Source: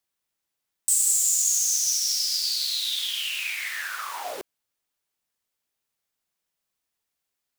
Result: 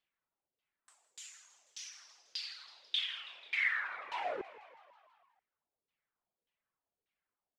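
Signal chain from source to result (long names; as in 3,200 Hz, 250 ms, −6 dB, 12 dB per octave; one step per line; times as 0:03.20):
downward compressor 4 to 1, threshold −25 dBFS, peak gain reduction 6.5 dB
reverb reduction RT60 0.77 s
auto-filter low-pass saw down 1.7 Hz 420–3,300 Hz
on a send: echo with shifted repeats 163 ms, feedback 64%, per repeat +63 Hz, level −17 dB
on the sum: level −3.5 dB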